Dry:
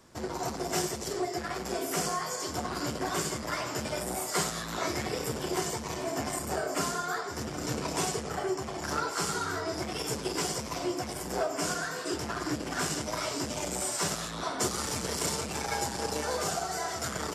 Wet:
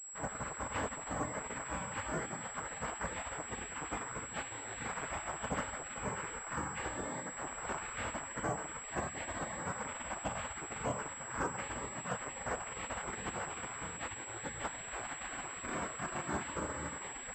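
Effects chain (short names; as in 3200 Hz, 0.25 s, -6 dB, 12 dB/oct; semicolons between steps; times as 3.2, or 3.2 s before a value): spectral gate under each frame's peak -15 dB weak; high shelf 2300 Hz -10.5 dB; soft clip -27.5 dBFS, distortion -31 dB; air absorption 300 m; pulse-width modulation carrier 7700 Hz; gain +8 dB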